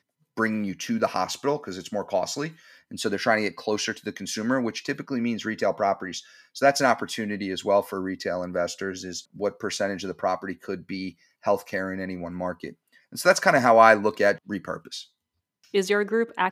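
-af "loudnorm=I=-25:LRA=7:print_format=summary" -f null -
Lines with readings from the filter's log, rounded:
Input Integrated:    -24.5 LUFS
Input True Peak:      -1.5 dBTP
Input LRA:             7.7 LU
Input Threshold:     -35.0 LUFS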